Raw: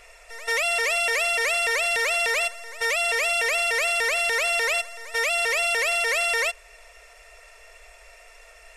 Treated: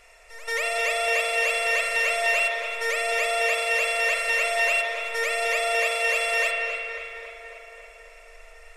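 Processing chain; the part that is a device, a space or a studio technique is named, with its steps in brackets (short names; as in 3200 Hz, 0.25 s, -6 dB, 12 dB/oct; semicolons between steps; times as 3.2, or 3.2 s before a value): dub delay into a spring reverb (darkening echo 0.276 s, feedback 70%, low-pass 4100 Hz, level -8 dB; spring tank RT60 2.4 s, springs 39 ms, chirp 40 ms, DRR 0.5 dB); gain -4.5 dB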